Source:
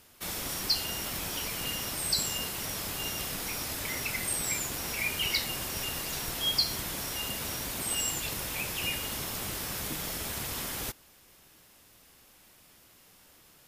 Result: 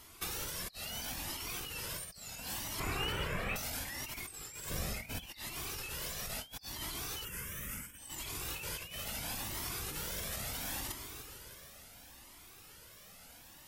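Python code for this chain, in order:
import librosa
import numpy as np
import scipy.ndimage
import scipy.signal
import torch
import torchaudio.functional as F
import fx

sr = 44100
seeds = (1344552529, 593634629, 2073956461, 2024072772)

y = fx.steep_lowpass(x, sr, hz=2800.0, slope=36, at=(2.8, 3.56))
y = fx.echo_heads(y, sr, ms=158, heads='first and second', feedback_pct=61, wet_db=-19.5)
y = fx.over_compress(y, sr, threshold_db=-38.0, ratio=-0.5)
y = fx.low_shelf(y, sr, hz=490.0, db=10.0, at=(4.71, 5.26))
y = fx.fixed_phaser(y, sr, hz=1800.0, stages=4, at=(7.25, 7.98))
y = fx.wow_flutter(y, sr, seeds[0], rate_hz=2.1, depth_cents=130.0)
y = fx.comb_cascade(y, sr, direction='rising', hz=0.73)
y = y * 10.0 ** (2.0 / 20.0)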